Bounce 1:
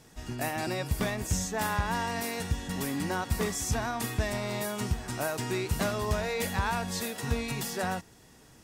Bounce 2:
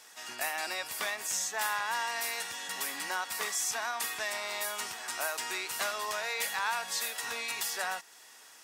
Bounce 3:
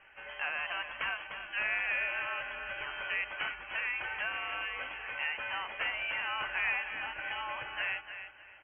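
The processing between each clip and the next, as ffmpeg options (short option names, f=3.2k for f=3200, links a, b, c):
-filter_complex "[0:a]highpass=1k,asplit=2[a][b];[b]acompressor=threshold=-44dB:ratio=6,volume=0.5dB[c];[a][c]amix=inputs=2:normalize=0"
-filter_complex "[0:a]asplit=2[a][b];[b]aecho=0:1:300|600|900:0.316|0.0822|0.0214[c];[a][c]amix=inputs=2:normalize=0,lowpass=f=2.9k:t=q:w=0.5098,lowpass=f=2.9k:t=q:w=0.6013,lowpass=f=2.9k:t=q:w=0.9,lowpass=f=2.9k:t=q:w=2.563,afreqshift=-3400"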